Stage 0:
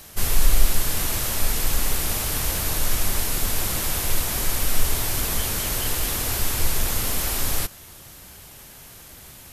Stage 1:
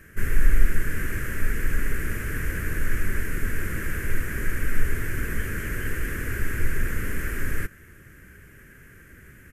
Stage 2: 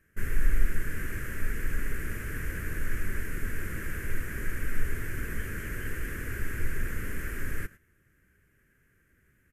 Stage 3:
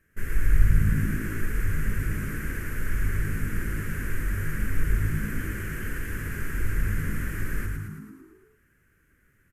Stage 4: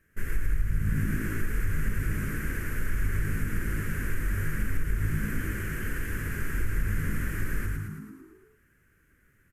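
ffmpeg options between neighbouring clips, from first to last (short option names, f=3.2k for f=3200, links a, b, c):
-af "firequalizer=gain_entry='entry(410,0);entry(780,-23);entry(1600,7);entry(3800,-27);entry(6800,-16)':delay=0.05:min_phase=1"
-af "agate=range=-12dB:threshold=-37dB:ratio=16:detection=peak,volume=-6dB"
-filter_complex "[0:a]asplit=9[a][b][c][d][e][f][g][h][i];[b]adelay=110,afreqshift=-55,volume=-3.5dB[j];[c]adelay=220,afreqshift=-110,volume=-8.1dB[k];[d]adelay=330,afreqshift=-165,volume=-12.7dB[l];[e]adelay=440,afreqshift=-220,volume=-17.2dB[m];[f]adelay=550,afreqshift=-275,volume=-21.8dB[n];[g]adelay=660,afreqshift=-330,volume=-26.4dB[o];[h]adelay=770,afreqshift=-385,volume=-31dB[p];[i]adelay=880,afreqshift=-440,volume=-35.6dB[q];[a][j][k][l][m][n][o][p][q]amix=inputs=9:normalize=0"
-af "acompressor=threshold=-21dB:ratio=6"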